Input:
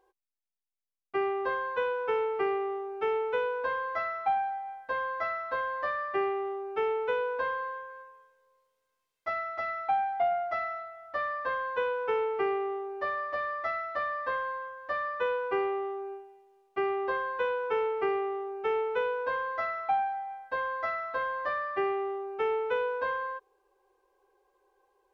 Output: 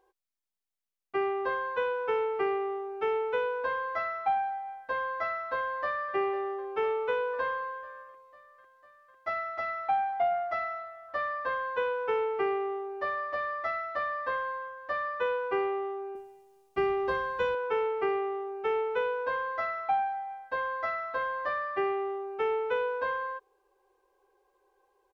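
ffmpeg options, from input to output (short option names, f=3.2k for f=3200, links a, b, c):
-filter_complex "[0:a]asplit=2[a][b];[b]afade=t=in:st=5.58:d=0.01,afade=t=out:st=6.14:d=0.01,aecho=0:1:500|1000|1500|2000|2500|3000|3500|4000|4500|5000|5500|6000:0.149624|0.119699|0.0957591|0.0766073|0.0612858|0.0490286|0.0392229|0.0313783|0.0251027|0.0200821|0.0160657|0.0128526[c];[a][c]amix=inputs=2:normalize=0,asettb=1/sr,asplit=3[d][e][f];[d]atrim=end=16.154[g];[e]atrim=start=16.15:end=17.55,asetpts=PTS-STARTPTS,afade=t=in:d=0.004:c=qsin,afade=t=out:st=1.396:d=0.004:c=qsin,bass=f=250:g=13,treble=f=4k:g=11[h];[f]atrim=start=17.546[i];[g][h]acrossfade=d=0.004:c1=hsin:c2=qsin[j];[j][i]acrossfade=d=0.004:c1=qsin:c2=hsin"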